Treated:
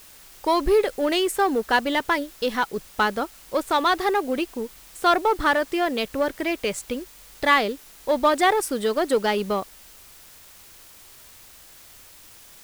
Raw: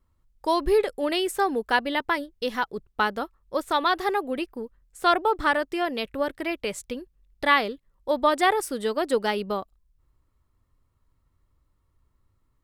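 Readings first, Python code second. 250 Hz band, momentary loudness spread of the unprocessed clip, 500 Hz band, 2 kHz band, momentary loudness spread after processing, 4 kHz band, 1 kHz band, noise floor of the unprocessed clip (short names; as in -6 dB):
+3.5 dB, 11 LU, +3.0 dB, +2.0 dB, 10 LU, +2.5 dB, +2.0 dB, -70 dBFS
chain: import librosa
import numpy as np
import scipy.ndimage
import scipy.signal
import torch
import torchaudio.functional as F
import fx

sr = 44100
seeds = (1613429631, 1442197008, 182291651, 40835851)

p1 = np.clip(10.0 ** (25.0 / 20.0) * x, -1.0, 1.0) / 10.0 ** (25.0 / 20.0)
p2 = x + (p1 * librosa.db_to_amplitude(-3.5))
y = fx.quant_dither(p2, sr, seeds[0], bits=8, dither='triangular')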